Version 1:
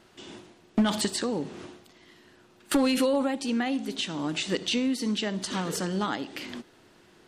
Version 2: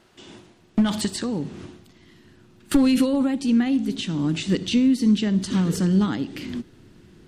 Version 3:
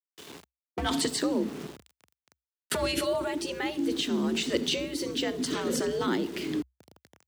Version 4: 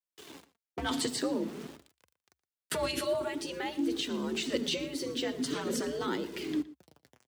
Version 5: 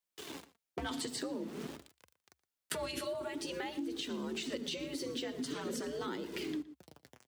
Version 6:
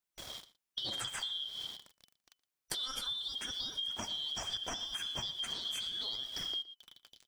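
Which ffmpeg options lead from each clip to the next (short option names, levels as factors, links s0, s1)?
-af "asubboost=boost=7:cutoff=250"
-af "aeval=exprs='val(0)*gte(abs(val(0)),0.00841)':c=same,afftfilt=real='re*lt(hypot(re,im),0.708)':imag='im*lt(hypot(re,im),0.708)':win_size=1024:overlap=0.75,afreqshift=63"
-filter_complex "[0:a]flanger=delay=1.9:depth=6.3:regen=46:speed=0.48:shape=sinusoidal,asplit=2[s0][s1];[s1]adelay=116.6,volume=0.126,highshelf=f=4000:g=-2.62[s2];[s0][s2]amix=inputs=2:normalize=0"
-af "acompressor=threshold=0.01:ratio=6,volume=1.5"
-af "afftfilt=real='real(if(lt(b,272),68*(eq(floor(b/68),0)*2+eq(floor(b/68),1)*3+eq(floor(b/68),2)*0+eq(floor(b/68),3)*1)+mod(b,68),b),0)':imag='imag(if(lt(b,272),68*(eq(floor(b/68),0)*2+eq(floor(b/68),1)*3+eq(floor(b/68),2)*0+eq(floor(b/68),3)*1)+mod(b,68),b),0)':win_size=2048:overlap=0.75"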